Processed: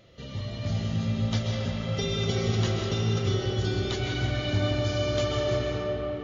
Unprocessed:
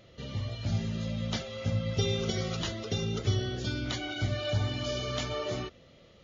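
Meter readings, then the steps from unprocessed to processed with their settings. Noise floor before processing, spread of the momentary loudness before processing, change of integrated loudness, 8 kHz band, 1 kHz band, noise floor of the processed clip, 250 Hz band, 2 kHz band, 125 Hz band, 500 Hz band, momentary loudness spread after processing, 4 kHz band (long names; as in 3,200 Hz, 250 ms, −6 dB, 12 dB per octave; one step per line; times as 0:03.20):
−57 dBFS, 5 LU, +4.5 dB, can't be measured, +4.5 dB, −39 dBFS, +4.5 dB, +3.5 dB, +5.0 dB, +6.0 dB, 4 LU, +2.5 dB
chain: comb and all-pass reverb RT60 4.8 s, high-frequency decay 0.4×, pre-delay 90 ms, DRR −2 dB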